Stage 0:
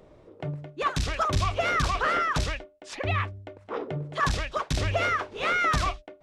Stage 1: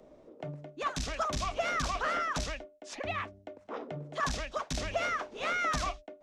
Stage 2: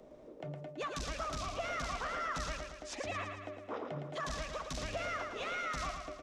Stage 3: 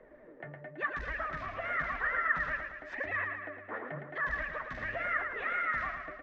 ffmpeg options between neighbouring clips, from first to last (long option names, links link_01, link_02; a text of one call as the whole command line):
ffmpeg -i in.wav -filter_complex "[0:a]equalizer=frequency=100:width_type=o:width=0.67:gain=-11,equalizer=frequency=250:width_type=o:width=0.67:gain=9,equalizer=frequency=630:width_type=o:width=0.67:gain=7,equalizer=frequency=6300:width_type=o:width=0.67:gain=6,acrossover=split=210|650|1800[link_01][link_02][link_03][link_04];[link_02]acompressor=threshold=-38dB:ratio=6[link_05];[link_01][link_05][link_03][link_04]amix=inputs=4:normalize=0,volume=-7dB" out.wav
ffmpeg -i in.wav -filter_complex "[0:a]alimiter=level_in=6.5dB:limit=-24dB:level=0:latency=1:release=201,volume=-6.5dB,asplit=2[link_01][link_02];[link_02]aecho=0:1:112|224|336|448|560|672|784:0.501|0.276|0.152|0.0834|0.0459|0.0252|0.0139[link_03];[link_01][link_03]amix=inputs=2:normalize=0" out.wav
ffmpeg -i in.wav -af "flanger=delay=1.9:depth=7.4:regen=38:speed=0.94:shape=sinusoidal,lowpass=frequency=1800:width_type=q:width=9.1,volume=1.5dB" out.wav